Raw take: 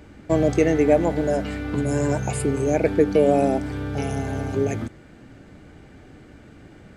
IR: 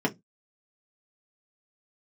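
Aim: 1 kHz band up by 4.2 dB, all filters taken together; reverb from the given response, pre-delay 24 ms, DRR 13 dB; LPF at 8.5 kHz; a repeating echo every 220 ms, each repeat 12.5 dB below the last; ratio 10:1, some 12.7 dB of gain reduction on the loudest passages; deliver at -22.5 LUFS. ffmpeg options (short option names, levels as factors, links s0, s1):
-filter_complex "[0:a]lowpass=8500,equalizer=f=1000:t=o:g=6.5,acompressor=threshold=0.0631:ratio=10,aecho=1:1:220|440|660:0.237|0.0569|0.0137,asplit=2[s0][s1];[1:a]atrim=start_sample=2205,adelay=24[s2];[s1][s2]afir=irnorm=-1:irlink=0,volume=0.0668[s3];[s0][s3]amix=inputs=2:normalize=0,volume=2"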